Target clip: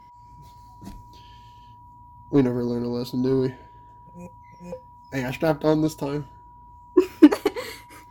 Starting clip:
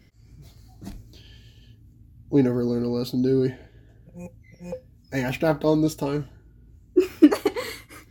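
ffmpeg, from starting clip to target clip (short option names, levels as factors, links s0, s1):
-af "aeval=exprs='val(0)+0.00631*sin(2*PI*970*n/s)':c=same,aeval=exprs='0.75*(cos(1*acos(clip(val(0)/0.75,-1,1)))-cos(1*PI/2))+0.0422*(cos(7*acos(clip(val(0)/0.75,-1,1)))-cos(7*PI/2))':c=same,volume=1.26"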